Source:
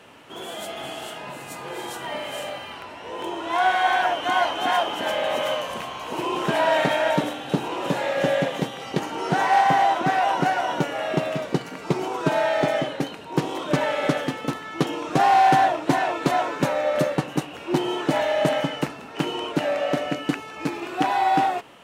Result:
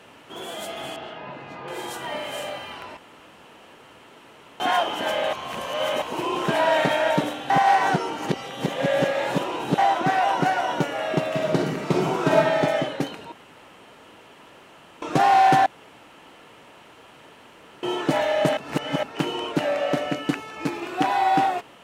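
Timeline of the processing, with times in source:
0:00.96–0:01.68: high-frequency loss of the air 260 metres
0:02.97–0:04.60: fill with room tone
0:05.33–0:06.02: reverse
0:07.50–0:09.78: reverse
0:11.29–0:12.36: thrown reverb, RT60 0.93 s, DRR −1 dB
0:13.32–0:15.02: fill with room tone
0:15.66–0:17.83: fill with room tone
0:18.57–0:19.03: reverse

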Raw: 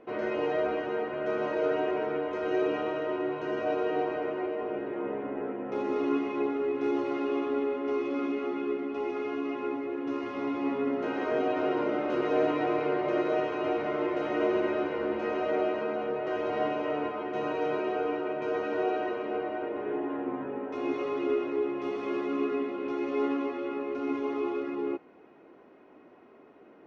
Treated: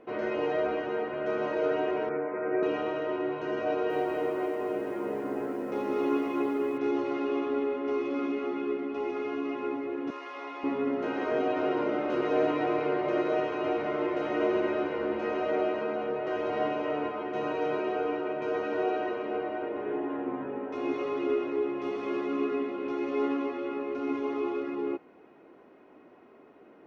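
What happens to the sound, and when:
0:02.09–0:02.63: Chebyshev band-pass filter 110–2,300 Hz, order 5
0:03.64–0:06.78: feedback echo at a low word length 259 ms, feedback 35%, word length 9 bits, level −8 dB
0:10.10–0:10.64: high-pass filter 690 Hz

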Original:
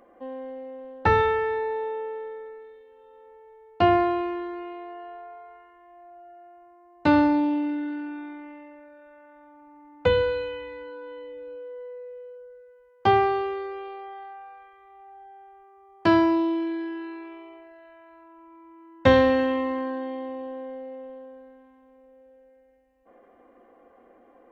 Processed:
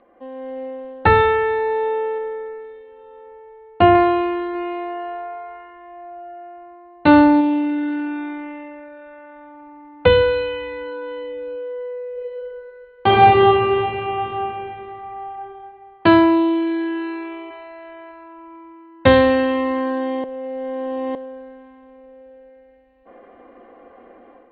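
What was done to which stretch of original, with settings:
0:02.18–0:03.95: high-frequency loss of the air 220 metres
0:04.53–0:07.41: double-tracking delay 17 ms −11 dB
0:12.12–0:15.31: thrown reverb, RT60 2.9 s, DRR −7.5 dB
0:16.95–0:17.56: delay throw 550 ms, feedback 10%, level −13.5 dB
0:20.24–0:21.15: reverse
whole clip: Butterworth low-pass 4,400 Hz 96 dB per octave; parametric band 2,600 Hz +2 dB; automatic gain control gain up to 10 dB

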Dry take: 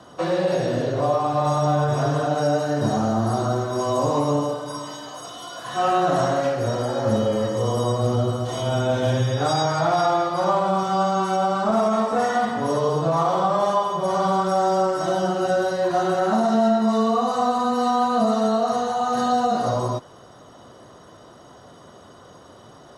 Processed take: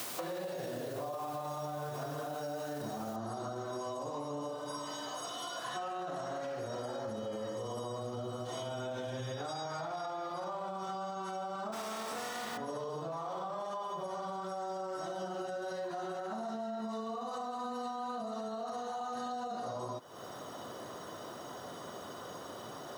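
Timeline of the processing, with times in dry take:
0:03.16: noise floor change −41 dB −65 dB
0:11.72–0:12.56: compressing power law on the bin magnitudes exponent 0.55
whole clip: high-pass filter 230 Hz 6 dB per octave; brickwall limiter −18.5 dBFS; downward compressor, threshold −40 dBFS; level +2 dB

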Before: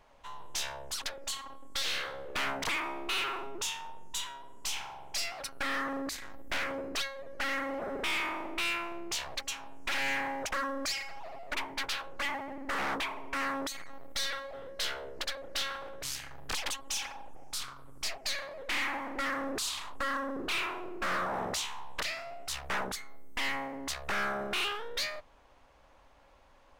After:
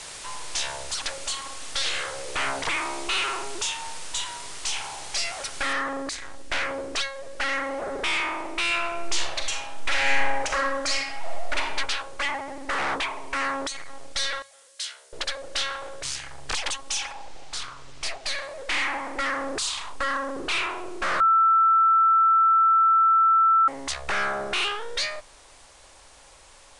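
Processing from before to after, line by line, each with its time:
0:01.89–0:02.93: linearly interpolated sample-rate reduction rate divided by 4×
0:05.73: noise floor change −43 dB −57 dB
0:08.66–0:11.74: thrown reverb, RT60 0.88 s, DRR 2 dB
0:14.42–0:15.13: first difference
0:17.11–0:18.37: linearly interpolated sample-rate reduction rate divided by 3×
0:21.20–0:23.68: beep over 1,330 Hz −21.5 dBFS
whole clip: Butterworth low-pass 10,000 Hz 72 dB per octave; parametric band 220 Hz −7.5 dB 0.76 octaves; mains-hum notches 60/120/180 Hz; level +6.5 dB

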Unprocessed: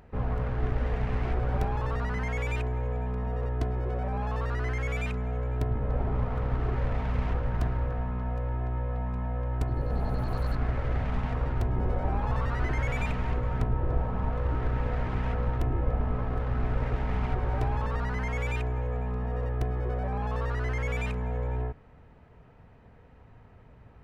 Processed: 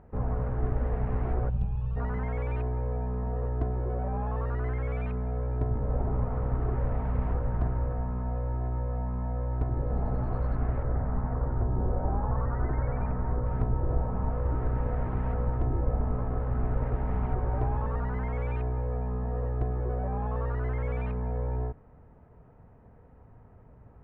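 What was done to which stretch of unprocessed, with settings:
0:01.49–0:01.97: gain on a spectral selection 220–2,400 Hz −17 dB
0:10.83–0:13.46: low-pass filter 1,800 Hz 24 dB per octave
whole clip: low-pass filter 1,200 Hz 12 dB per octave

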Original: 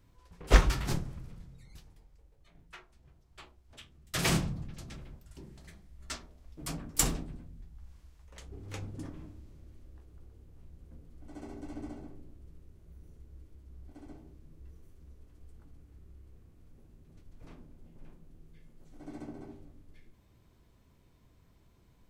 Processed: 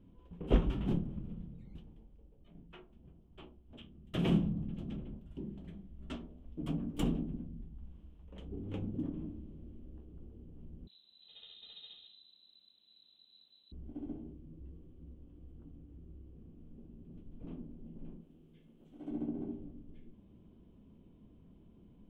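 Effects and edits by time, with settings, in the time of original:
0:10.87–0:13.72: voice inversion scrambler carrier 4,000 Hz
0:14.33–0:16.38: notch comb filter 210 Hz
0:18.21–0:19.11: spectral tilt +3 dB per octave
whole clip: drawn EQ curve 130 Hz 0 dB, 200 Hz +12 dB, 2,000 Hz −14 dB, 3,100 Hz −2 dB, 4,500 Hz −25 dB; downward compressor 1.5 to 1, threshold −38 dBFS; level +1 dB

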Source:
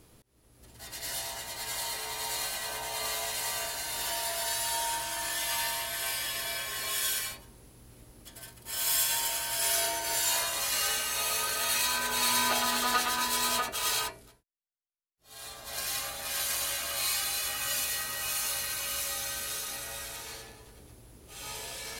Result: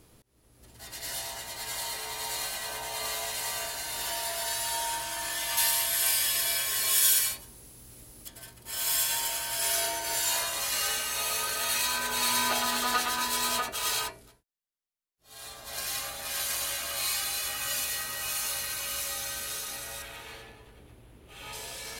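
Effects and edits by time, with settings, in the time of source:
0:05.57–0:08.28: high-shelf EQ 4,100 Hz +10.5 dB
0:20.02–0:21.53: high shelf with overshoot 4,000 Hz −8 dB, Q 1.5

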